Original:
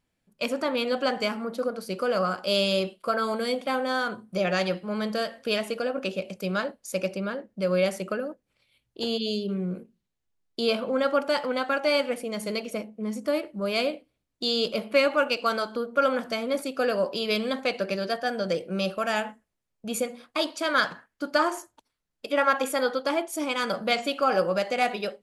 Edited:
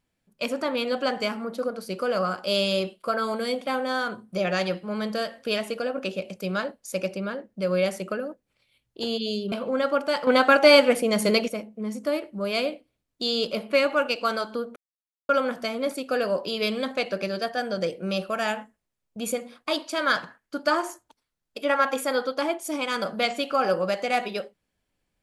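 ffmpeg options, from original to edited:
ffmpeg -i in.wav -filter_complex "[0:a]asplit=5[link_01][link_02][link_03][link_04][link_05];[link_01]atrim=end=9.522[link_06];[link_02]atrim=start=10.728:end=11.482[link_07];[link_03]atrim=start=11.478:end=12.692,asetpts=PTS-STARTPTS,volume=9dB[link_08];[link_04]atrim=start=12.688:end=15.97,asetpts=PTS-STARTPTS,afade=type=out:start_time=3.278:duration=0.004:curve=hsin,apad=pad_dur=0.53[link_09];[link_05]atrim=start=15.97,asetpts=PTS-STARTPTS,afade=type=in:duration=0.004:curve=hsin[link_10];[link_06][link_07]acrossfade=duration=0.004:curve1=hsin:curve2=hsin[link_11];[link_11][link_08]acrossfade=duration=0.004:curve1=hsin:curve2=hsin[link_12];[link_09][link_10]concat=n=2:v=0:a=1[link_13];[link_12][link_13]acrossfade=duration=0.004:curve1=hsin:curve2=hsin" out.wav

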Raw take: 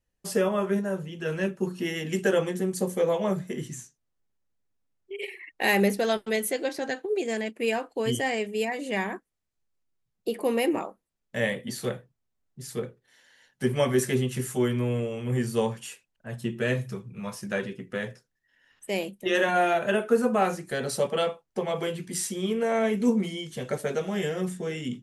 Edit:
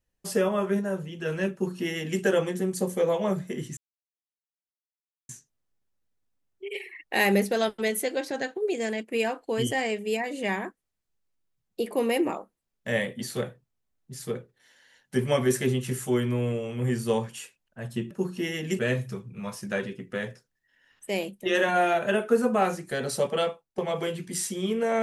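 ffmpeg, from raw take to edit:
ffmpeg -i in.wav -filter_complex "[0:a]asplit=5[link_01][link_02][link_03][link_04][link_05];[link_01]atrim=end=3.77,asetpts=PTS-STARTPTS,afade=type=out:start_time=3.766:duration=0.004:curve=hsin,apad=pad_dur=1.52[link_06];[link_02]atrim=start=3.77:end=16.592,asetpts=PTS-STARTPTS,afade=type=in:duration=0.004:curve=hsin[link_07];[link_03]atrim=start=1.528:end=2.212[link_08];[link_04]atrim=start=16.588:end=21.58,asetpts=PTS-STARTPTS,afade=type=out:start_time=4.652:duration=0.34:silence=0.211349[link_09];[link_05]atrim=start=21.58,asetpts=PTS-STARTPTS,afade=type=in:duration=0.004:curve=hsin:silence=0.211349[link_10];[link_06][link_07]concat=n=2:v=0:a=1[link_11];[link_11][link_08]acrossfade=duration=0.004:curve1=hsin:curve2=hsin[link_12];[link_09][link_10]concat=n=2:v=0:a=1[link_13];[link_12][link_13]acrossfade=duration=0.004:curve1=hsin:curve2=hsin" out.wav

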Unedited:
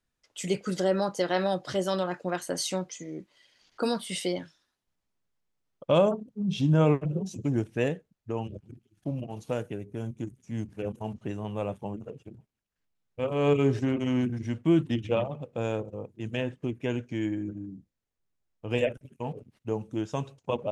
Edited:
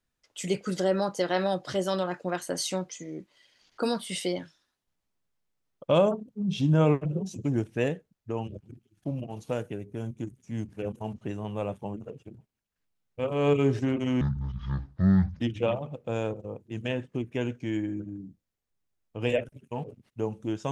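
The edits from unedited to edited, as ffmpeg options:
ffmpeg -i in.wav -filter_complex "[0:a]asplit=3[link_01][link_02][link_03];[link_01]atrim=end=14.214[link_04];[link_02]atrim=start=14.21:end=14.89,asetpts=PTS-STARTPTS,asetrate=25137,aresample=44100[link_05];[link_03]atrim=start=14.886[link_06];[link_04][link_05]acrossfade=duration=0.004:curve1=hsin:curve2=hsin[link_07];[link_07][link_06]acrossfade=duration=0.004:curve1=hsin:curve2=hsin" out.wav

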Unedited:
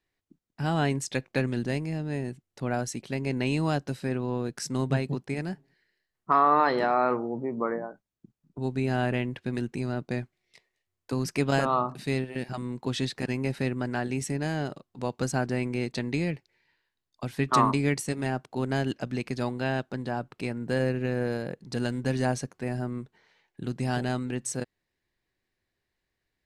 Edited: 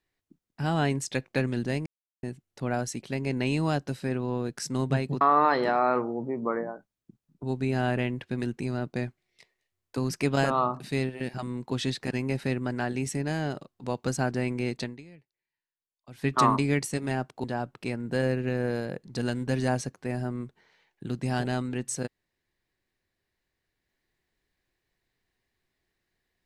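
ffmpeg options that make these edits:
ffmpeg -i in.wav -filter_complex "[0:a]asplit=7[link_01][link_02][link_03][link_04][link_05][link_06][link_07];[link_01]atrim=end=1.86,asetpts=PTS-STARTPTS,afade=type=out:start_time=1.856:duration=0.004:curve=hsin[link_08];[link_02]atrim=start=1.86:end=2.23,asetpts=PTS-STARTPTS,volume=0[link_09];[link_03]atrim=start=2.23:end=5.212,asetpts=PTS-STARTPTS,afade=type=in:duration=0.004:curve=hsin[link_10];[link_04]atrim=start=6.358:end=16.21,asetpts=PTS-STARTPTS,afade=type=out:start_time=9.602:duration=0.25:curve=qua:silence=0.0841395[link_11];[link_05]atrim=start=16.21:end=17.16,asetpts=PTS-STARTPTS,volume=-21.5dB[link_12];[link_06]atrim=start=17.16:end=18.592,asetpts=PTS-STARTPTS,afade=type=in:duration=0.25:curve=qua:silence=0.0841395[link_13];[link_07]atrim=start=20.008[link_14];[link_08][link_09][link_10]concat=n=3:v=0:a=1[link_15];[link_11][link_12][link_13]concat=n=3:v=0:a=1[link_16];[link_15][link_16]acrossfade=duration=0.004:curve1=hsin:curve2=hsin[link_17];[link_17][link_14]acrossfade=duration=0.004:curve1=hsin:curve2=hsin" out.wav

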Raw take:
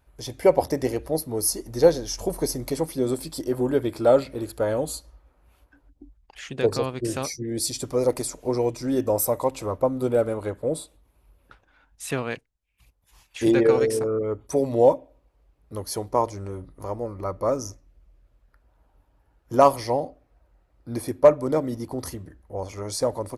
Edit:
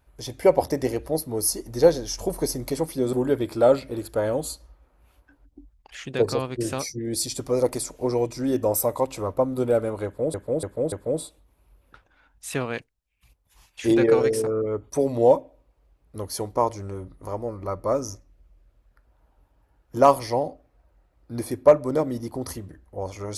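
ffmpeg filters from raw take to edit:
ffmpeg -i in.wav -filter_complex "[0:a]asplit=5[link_01][link_02][link_03][link_04][link_05];[link_01]atrim=end=3.132[link_06];[link_02]atrim=start=3.568:end=10.782[link_07];[link_03]atrim=start=10.488:end=10.782[link_08];[link_04]atrim=start=10.488:end=10.782[link_09];[link_05]atrim=start=10.488[link_10];[link_06][link_07]acrossfade=duration=0.004:curve1=hsin:curve2=hsin[link_11];[link_11][link_08]acrossfade=duration=0.004:curve1=hsin:curve2=hsin[link_12];[link_12][link_09]acrossfade=duration=0.004:curve1=hsin:curve2=hsin[link_13];[link_13][link_10]acrossfade=duration=0.004:curve1=hsin:curve2=hsin" out.wav

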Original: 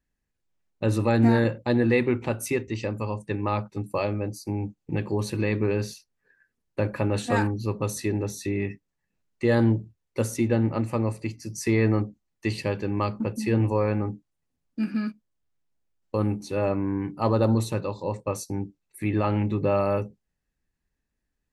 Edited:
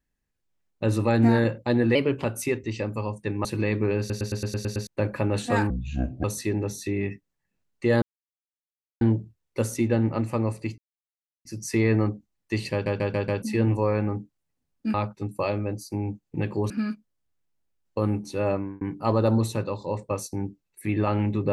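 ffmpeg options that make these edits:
ffmpeg -i in.wav -filter_complex "[0:a]asplit=24[link_01][link_02][link_03][link_04][link_05][link_06][link_07][link_08][link_09][link_10][link_11][link_12][link_13][link_14][link_15][link_16][link_17][link_18][link_19][link_20][link_21][link_22][link_23][link_24];[link_01]atrim=end=1.954[link_25];[link_02]atrim=start=1.95:end=2.28,asetpts=PTS-STARTPTS,asetrate=50274,aresample=44100[link_26];[link_03]atrim=start=2.276:end=3.492[link_27];[link_04]atrim=start=5.248:end=5.902[link_28];[link_05]atrim=start=5.788:end=5.902[link_29];[link_06]atrim=start=5.788:end=5.902[link_30];[link_07]atrim=start=5.788:end=5.902[link_31];[link_08]atrim=start=5.788:end=5.902[link_32];[link_09]atrim=start=5.788:end=5.902[link_33];[link_10]atrim=start=5.788:end=5.902[link_34];[link_11]atrim=start=5.788:end=5.902[link_35];[link_12]atrim=start=6.668:end=7.504[link_36];[link_13]atrim=start=7.5:end=7.83,asetpts=PTS-STARTPTS,asetrate=26901,aresample=44100,atrim=end_sample=23857,asetpts=PTS-STARTPTS[link_37];[link_14]atrim=start=7.826:end=9.61,asetpts=PTS-STARTPTS,afade=type=out:start_time=1.78:duration=0.004:curve=hsin,apad=pad_dur=0.99[link_38];[link_15]atrim=start=9.61:end=11.38,asetpts=PTS-STARTPTS,afade=type=in:duration=0.004:curve=hsin,afade=type=out:start_time=1.766:duration=0.004:curve=hsin,apad=pad_dur=0.67[link_39];[link_16]atrim=start=11.38:end=12.792,asetpts=PTS-STARTPTS,afade=type=in:duration=0.004:curve=hsin[link_40];[link_17]atrim=start=12.648:end=12.792[link_41];[link_18]atrim=start=12.648:end=12.792[link_42];[link_19]atrim=start=12.648:end=12.792[link_43];[link_20]atrim=start=12.648:end=12.792[link_44];[link_21]atrim=start=13.348:end=14.872[link_45];[link_22]atrim=start=3.488:end=5.252[link_46];[link_23]atrim=start=14.868:end=16.98,asetpts=PTS-STARTPTS,afade=type=out:start_time=1.822:duration=0.29[link_47];[link_24]atrim=start=16.98,asetpts=PTS-STARTPTS,afade=type=in:duration=0.004:curve=hsin[link_48];[link_25][link_26]acrossfade=duration=0.004:curve1=hsin:curve2=hsin[link_49];[link_49][link_27]acrossfade=duration=0.004:curve1=hsin:curve2=hsin[link_50];[link_50][link_28]acrossfade=duration=0.004:curve1=hsin:curve2=hsin[link_51];[link_51][link_29]acrossfade=duration=0.004:curve1=hsin:curve2=hsin[link_52];[link_52][link_30]acrossfade=duration=0.004:curve1=hsin:curve2=hsin[link_53];[link_53][link_31]acrossfade=duration=0.004:curve1=hsin:curve2=hsin[link_54];[link_54][link_32]acrossfade=duration=0.004:curve1=hsin:curve2=hsin[link_55];[link_55][link_33]acrossfade=duration=0.004:curve1=hsin:curve2=hsin[link_56];[link_56][link_34]acrossfade=duration=0.004:curve1=hsin:curve2=hsin[link_57];[link_57][link_35]acrossfade=duration=0.004:curve1=hsin:curve2=hsin[link_58];[link_58][link_36]acrossfade=duration=0.004:curve1=hsin:curve2=hsin[link_59];[link_59][link_37]acrossfade=duration=0.004:curve1=hsin:curve2=hsin[link_60];[link_38][link_39][link_40]concat=n=3:v=0:a=1[link_61];[link_60][link_61]acrossfade=duration=0.004:curve1=hsin:curve2=hsin[link_62];[link_62][link_41]acrossfade=duration=0.004:curve1=hsin:curve2=hsin[link_63];[link_63][link_42]acrossfade=duration=0.004:curve1=hsin:curve2=hsin[link_64];[link_64][link_43]acrossfade=duration=0.004:curve1=hsin:curve2=hsin[link_65];[link_65][link_44]acrossfade=duration=0.004:curve1=hsin:curve2=hsin[link_66];[link_66][link_45]acrossfade=duration=0.004:curve1=hsin:curve2=hsin[link_67];[link_67][link_46]acrossfade=duration=0.004:curve1=hsin:curve2=hsin[link_68];[link_47][link_48]concat=n=2:v=0:a=1[link_69];[link_68][link_69]acrossfade=duration=0.004:curve1=hsin:curve2=hsin" out.wav

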